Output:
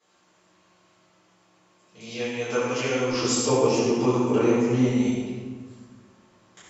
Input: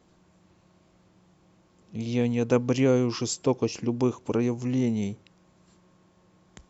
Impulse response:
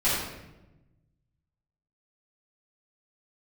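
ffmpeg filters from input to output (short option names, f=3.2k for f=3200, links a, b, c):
-filter_complex "[0:a]asetnsamples=n=441:p=0,asendcmd='3.1 highpass f 410;4.87 highpass f 1100',highpass=f=1.5k:p=1[a];[1:a]atrim=start_sample=2205,asetrate=25578,aresample=44100[b];[a][b]afir=irnorm=-1:irlink=0,volume=-8.5dB"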